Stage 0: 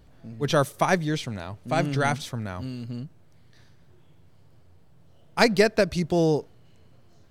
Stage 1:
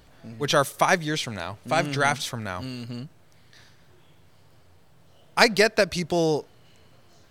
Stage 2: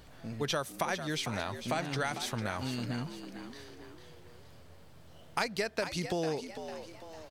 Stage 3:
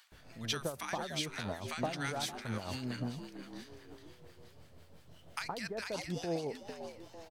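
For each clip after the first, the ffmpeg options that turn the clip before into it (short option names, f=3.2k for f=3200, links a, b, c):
-filter_complex "[0:a]asplit=2[a][b];[b]acompressor=threshold=-31dB:ratio=6,volume=-3dB[c];[a][c]amix=inputs=2:normalize=0,lowshelf=f=500:g=-10,volume=3.5dB"
-filter_complex "[0:a]acompressor=threshold=-31dB:ratio=5,asplit=2[a][b];[b]asplit=5[c][d][e][f][g];[c]adelay=450,afreqshift=79,volume=-10dB[h];[d]adelay=900,afreqshift=158,volume=-16.9dB[i];[e]adelay=1350,afreqshift=237,volume=-23.9dB[j];[f]adelay=1800,afreqshift=316,volume=-30.8dB[k];[g]adelay=2250,afreqshift=395,volume=-37.7dB[l];[h][i][j][k][l]amix=inputs=5:normalize=0[m];[a][m]amix=inputs=2:normalize=0"
-filter_complex "[0:a]tremolo=f=5.8:d=0.62,acrossover=split=1100[a][b];[a]adelay=120[c];[c][b]amix=inputs=2:normalize=0"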